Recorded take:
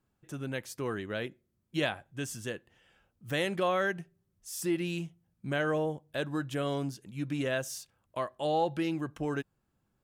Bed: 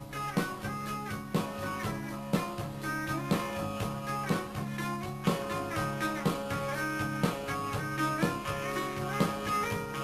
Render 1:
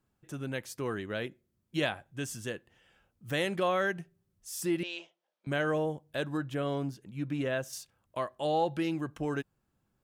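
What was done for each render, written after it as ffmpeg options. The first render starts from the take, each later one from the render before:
-filter_complex "[0:a]asettb=1/sr,asplit=3[a][b][c];[a]atrim=end=4.834[d];[b]atrim=start=4.83:end=5.47,asetpts=PTS-STARTPTS,afade=t=in:d=0.004:c=qsin,afade=t=out:st=0.636:d=0.004:c=qsin,highpass=f=460:w=0.5412,highpass=f=460:w=1.3066,equalizer=f=590:t=q:w=4:g=8,equalizer=f=950:t=q:w=4:g=3,equalizer=f=3.3k:t=q:w=4:g=5,lowpass=f=5.7k:w=0.5412,lowpass=f=5.7k:w=1.3066[e];[c]atrim=start=5.466[f];[d][e]acrossfade=d=0.004:c1=hsin:c2=qsin[g];[g][f]acrossfade=d=0.004:c1=qsin:c2=hsin,asettb=1/sr,asplit=3[h][i][j];[h]atrim=end=6.374[k];[i]atrim=start=6.37:end=7.73,asetpts=PTS-STARTPTS,afade=t=in:d=0.004:c=qsin,afade=t=out:st=1.356:d=0.004:c=qsin,equalizer=f=8.5k:w=0.4:g=-8[l];[j]atrim=start=7.726[m];[k][l]acrossfade=d=0.004:c1=hsin:c2=qsin[n];[n][m]acrossfade=d=0.004:c1=qsin:c2=hsin"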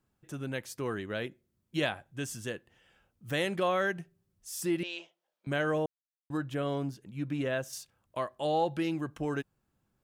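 -filter_complex "[0:a]asplit=3[a][b][c];[a]atrim=end=5.86,asetpts=PTS-STARTPTS,afade=t=out:st=5.856:d=0.004:c=hsin[d];[b]atrim=start=5.86:end=6.3,asetpts=PTS-STARTPTS,volume=0[e];[c]atrim=start=6.3,asetpts=PTS-STARTPTS,afade=t=in:d=0.004:c=hsin[f];[d][e][f]concat=n=3:v=0:a=1"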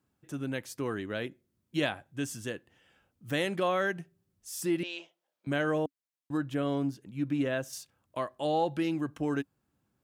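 -af "highpass=56,equalizer=f=280:t=o:w=0.27:g=5.5"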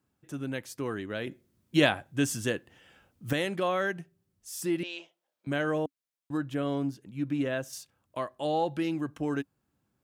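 -filter_complex "[0:a]asplit=3[a][b][c];[a]atrim=end=1.272[d];[b]atrim=start=1.268:end=3.332,asetpts=PTS-STARTPTS,volume=7dB[e];[c]atrim=start=3.328[f];[d][e]acrossfade=d=0.004:c1=hsin:c2=hsin[g];[g][f]acrossfade=d=0.004:c1=hsin:c2=hsin"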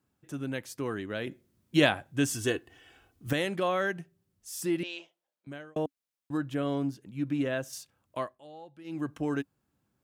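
-filter_complex "[0:a]asettb=1/sr,asplit=3[a][b][c];[a]atrim=end=2.334[d];[b]atrim=start=2.33:end=3.27,asetpts=PTS-STARTPTS,afade=t=in:d=0.004:c=qsin,afade=t=out:st=0.936:d=0.004:c=qsin,aecho=1:1:2.7:0.65,atrim=end_sample=41454[e];[c]atrim=start=3.266[f];[d][e]acrossfade=d=0.004:c1=hsin:c2=qsin[g];[g][f]acrossfade=d=0.004:c1=qsin:c2=hsin,asplit=4[h][i][j][k];[h]atrim=end=5.76,asetpts=PTS-STARTPTS,afade=t=out:st=4.9:d=0.86[l];[i]atrim=start=5.76:end=8.41,asetpts=PTS-STARTPTS,afade=t=in:d=0.004:c=hsin,afade=t=out:st=2.46:d=0.19:silence=0.105925[m];[j]atrim=start=8.41:end=8.84,asetpts=PTS-STARTPTS,volume=-19.5dB[n];[k]atrim=start=8.84,asetpts=PTS-STARTPTS,afade=t=in:d=0.19:silence=0.105925[o];[l][m][n][o]concat=n=4:v=0:a=1"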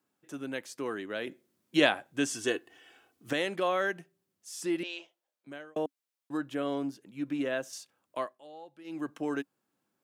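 -filter_complex "[0:a]highpass=270,acrossover=split=9500[a][b];[b]acompressor=threshold=-59dB:ratio=4:attack=1:release=60[c];[a][c]amix=inputs=2:normalize=0"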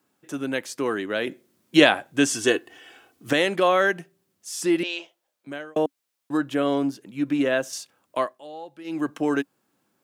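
-af "volume=9.5dB,alimiter=limit=-2dB:level=0:latency=1"

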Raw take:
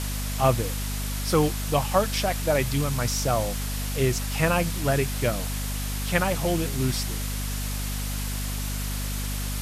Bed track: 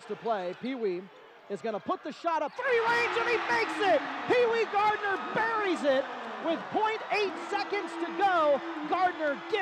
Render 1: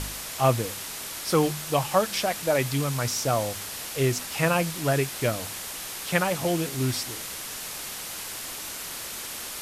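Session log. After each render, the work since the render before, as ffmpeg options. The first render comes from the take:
-af "bandreject=f=50:t=h:w=4,bandreject=f=100:t=h:w=4,bandreject=f=150:t=h:w=4,bandreject=f=200:t=h:w=4,bandreject=f=250:t=h:w=4"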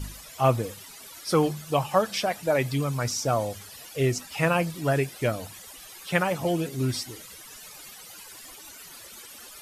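-af "afftdn=nr=15:nf=-36"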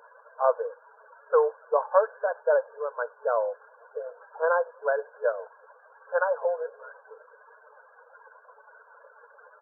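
-af "aecho=1:1:2:0.52,afftfilt=real='re*between(b*sr/4096,430,1700)':imag='im*between(b*sr/4096,430,1700)':win_size=4096:overlap=0.75"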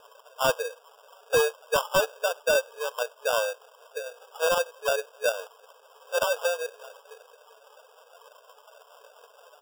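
-af "acrusher=samples=21:mix=1:aa=0.000001,asoftclip=type=hard:threshold=-16.5dB"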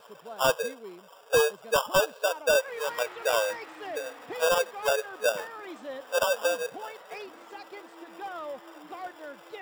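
-filter_complex "[1:a]volume=-13dB[a];[0:a][a]amix=inputs=2:normalize=0"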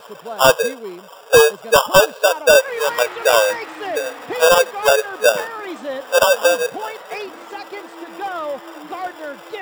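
-af "volume=12dB"

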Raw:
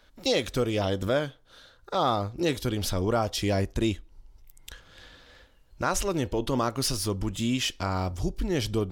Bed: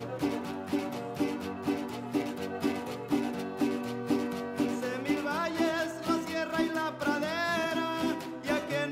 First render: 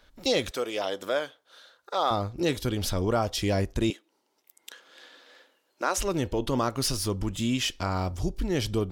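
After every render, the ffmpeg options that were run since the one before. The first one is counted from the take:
-filter_complex "[0:a]asettb=1/sr,asplit=3[a][b][c];[a]atrim=end=0.514[d];[b]atrim=start=0.51:end=2.11,asetpts=PTS-STARTPTS,afade=t=in:d=0.004:c=qsin,afade=t=out:st=1.596:d=0.004:c=qsin,highpass=460[e];[c]atrim=start=2.106[f];[d][e]acrossfade=d=0.004:c1=hsin:c2=qsin[g];[g][f]acrossfade=d=0.004:c1=qsin:c2=hsin,asettb=1/sr,asplit=3[h][i][j];[h]atrim=end=3.904[k];[i]atrim=start=3.9:end=5.98,asetpts=PTS-STARTPTS,afade=t=in:d=0.004:c=qsin,afade=t=out:st=2.076:d=0.004:c=qsin,highpass=f=290:w=0.5412,highpass=f=290:w=1.3066[l];[j]atrim=start=5.976[m];[k][l]acrossfade=d=0.004:c1=hsin:c2=qsin[n];[n][m]acrossfade=d=0.004:c1=qsin:c2=hsin"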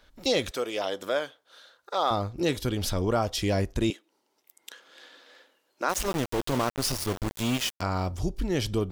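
-filter_complex "[0:a]asplit=3[a][b][c];[a]afade=t=out:st=5.88:d=0.02[d];[b]aeval=exprs='val(0)*gte(abs(val(0)),0.0398)':c=same,afade=t=in:st=5.88:d=0.02,afade=t=out:st=7.8:d=0.02[e];[c]afade=t=in:st=7.8:d=0.02[f];[d][e][f]amix=inputs=3:normalize=0"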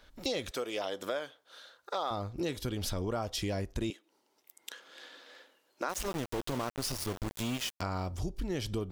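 -af "acompressor=threshold=-33dB:ratio=3"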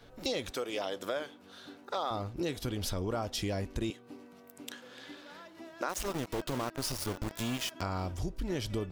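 -filter_complex "[1:a]volume=-20.5dB[a];[0:a][a]amix=inputs=2:normalize=0"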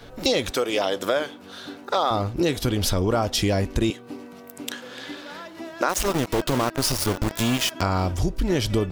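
-af "volume=12dB"

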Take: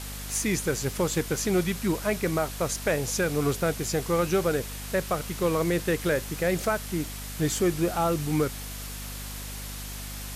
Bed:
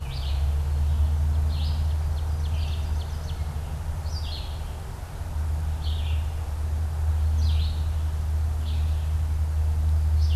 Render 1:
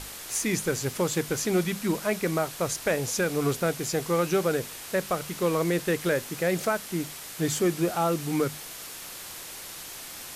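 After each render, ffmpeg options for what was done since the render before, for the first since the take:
-af "bandreject=f=50:t=h:w=6,bandreject=f=100:t=h:w=6,bandreject=f=150:t=h:w=6,bandreject=f=200:t=h:w=6,bandreject=f=250:t=h:w=6"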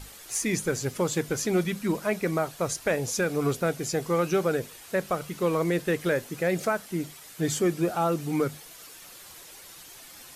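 -af "afftdn=nr=9:nf=-41"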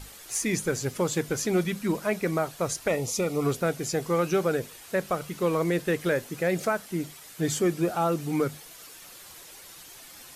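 -filter_complex "[0:a]asettb=1/sr,asplit=3[a][b][c];[a]atrim=end=2.884[d];[b]atrim=start=2.88:end=3.45,asetpts=PTS-STARTPTS,afade=t=in:d=0.004:c=qsin,afade=t=out:st=0.566:d=0.004:c=qsin,asuperstop=centerf=1600:order=12:qfactor=4.5[e];[c]atrim=start=3.446[f];[d][e]acrossfade=d=0.004:c1=hsin:c2=qsin[g];[g][f]acrossfade=d=0.004:c1=qsin:c2=hsin"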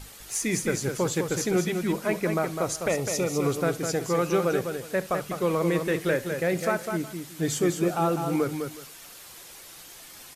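-af "aecho=1:1:68|204|366:0.112|0.473|0.106"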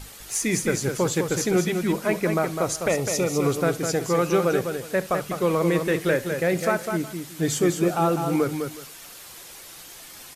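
-af "volume=3dB"

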